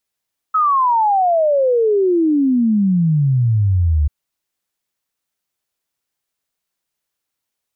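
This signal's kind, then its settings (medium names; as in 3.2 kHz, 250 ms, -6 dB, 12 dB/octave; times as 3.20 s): log sweep 1.3 kHz -> 71 Hz 3.54 s -11.5 dBFS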